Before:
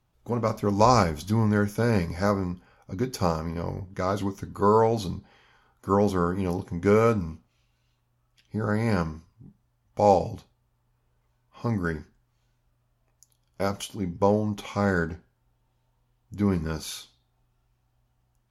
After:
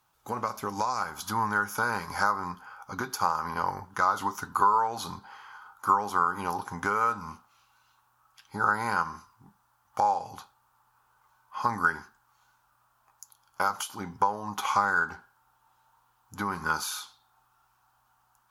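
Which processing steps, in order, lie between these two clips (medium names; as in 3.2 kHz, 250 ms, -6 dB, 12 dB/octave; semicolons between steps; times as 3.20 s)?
tilt EQ +3 dB/octave; compression 20:1, threshold -31 dBFS, peak gain reduction 17.5 dB; high-order bell 1.1 kHz +9 dB 1.2 oct, from 1.00 s +15.5 dB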